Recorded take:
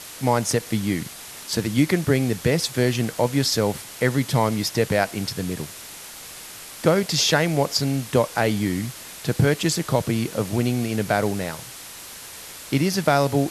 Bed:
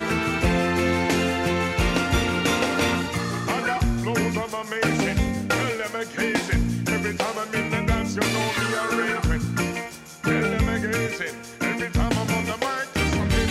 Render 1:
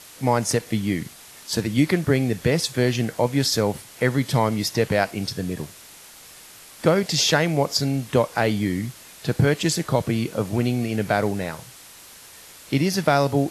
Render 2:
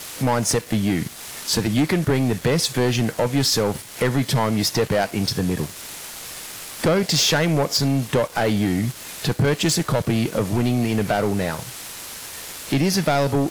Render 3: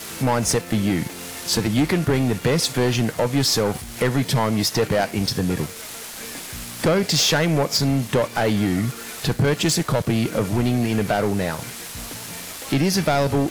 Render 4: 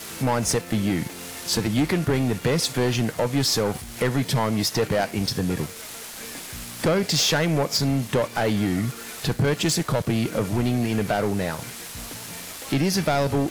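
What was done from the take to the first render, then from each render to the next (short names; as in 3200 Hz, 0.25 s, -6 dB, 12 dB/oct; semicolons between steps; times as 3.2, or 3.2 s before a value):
noise print and reduce 6 dB
compressor 1.5:1, threshold -36 dBFS, peak gain reduction 8.5 dB; sample leveller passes 3
add bed -16 dB
gain -2.5 dB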